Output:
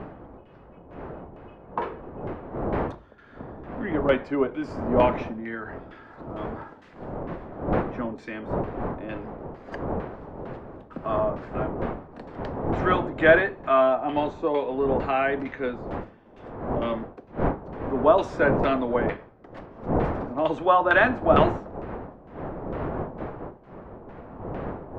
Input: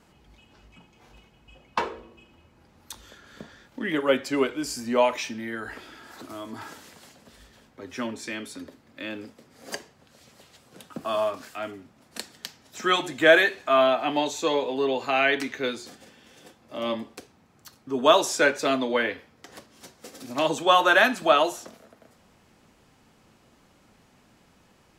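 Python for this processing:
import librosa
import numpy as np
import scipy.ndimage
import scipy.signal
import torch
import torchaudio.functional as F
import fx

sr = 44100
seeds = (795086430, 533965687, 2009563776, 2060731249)

y = fx.dmg_wind(x, sr, seeds[0], corner_hz=590.0, level_db=-32.0)
y = fx.filter_lfo_lowpass(y, sr, shape='saw_down', hz=2.2, low_hz=820.0, high_hz=2300.0, q=0.87)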